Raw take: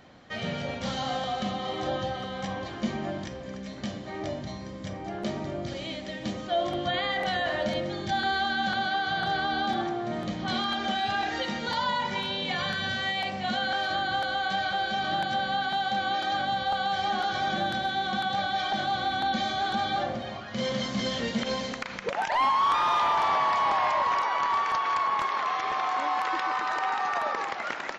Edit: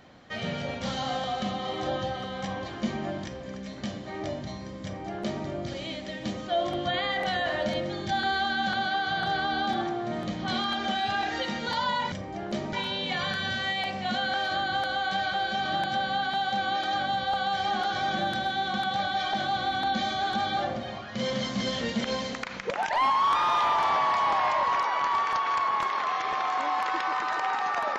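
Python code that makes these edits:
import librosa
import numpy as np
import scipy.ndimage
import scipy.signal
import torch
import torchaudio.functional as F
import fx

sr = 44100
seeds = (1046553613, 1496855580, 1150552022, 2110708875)

y = fx.edit(x, sr, fx.duplicate(start_s=4.84, length_s=0.61, to_s=12.12), tone=tone)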